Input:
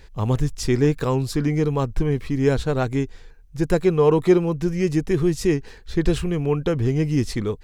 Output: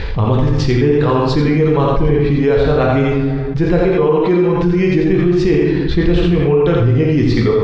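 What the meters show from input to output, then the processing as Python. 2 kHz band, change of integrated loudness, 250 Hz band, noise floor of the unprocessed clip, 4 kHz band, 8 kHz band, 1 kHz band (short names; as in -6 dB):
+9.0 dB, +8.0 dB, +8.0 dB, -45 dBFS, +7.5 dB, n/a, +9.5 dB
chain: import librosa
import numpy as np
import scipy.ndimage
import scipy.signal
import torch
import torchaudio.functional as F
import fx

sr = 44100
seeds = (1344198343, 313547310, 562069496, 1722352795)

y = fx.dereverb_blind(x, sr, rt60_s=0.99)
y = scipy.signal.sosfilt(scipy.signal.butter(4, 4200.0, 'lowpass', fs=sr, output='sos'), y)
y = fx.peak_eq(y, sr, hz=82.0, db=3.5, octaves=1.3)
y = fx.rider(y, sr, range_db=10, speed_s=0.5)
y = y + 10.0 ** (-3.5 / 20.0) * np.pad(y, (int(85 * sr / 1000.0), 0))[:len(y)]
y = fx.rev_plate(y, sr, seeds[0], rt60_s=1.0, hf_ratio=0.7, predelay_ms=0, drr_db=0.5)
y = fx.env_flatten(y, sr, amount_pct=70)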